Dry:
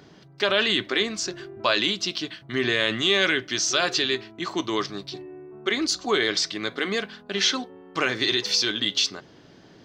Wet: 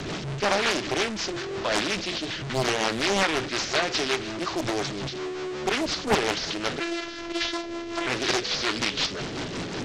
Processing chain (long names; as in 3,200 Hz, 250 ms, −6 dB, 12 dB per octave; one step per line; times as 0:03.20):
linear delta modulator 32 kbit/s, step −26 dBFS
rotating-speaker cabinet horn 5.5 Hz
0:06.80–0:08.07: phases set to zero 339 Hz
highs frequency-modulated by the lows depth 0.95 ms
level +2 dB